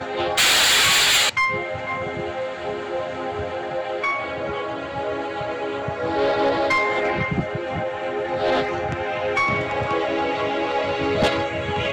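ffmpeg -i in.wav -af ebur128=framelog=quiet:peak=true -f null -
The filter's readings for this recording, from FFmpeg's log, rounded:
Integrated loudness:
  I:         -21.4 LUFS
  Threshold: -31.4 LUFS
Loudness range:
  LRA:         8.2 LU
  Threshold: -42.8 LUFS
  LRA low:   -26.6 LUFS
  LRA high:  -18.5 LUFS
True peak:
  Peak:      -11.9 dBFS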